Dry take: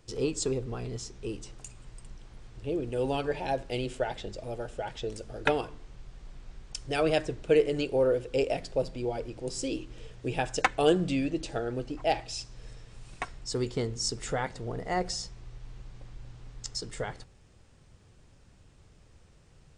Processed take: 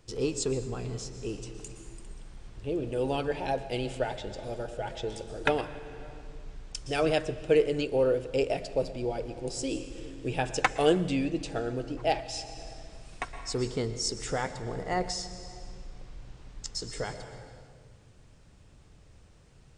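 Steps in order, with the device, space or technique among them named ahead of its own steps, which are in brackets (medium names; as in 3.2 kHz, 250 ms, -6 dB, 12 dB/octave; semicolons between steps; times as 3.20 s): compressed reverb return (on a send at -5 dB: reverberation RT60 1.6 s, pre-delay 111 ms + compression, threshold -35 dBFS, peak gain reduction 14 dB)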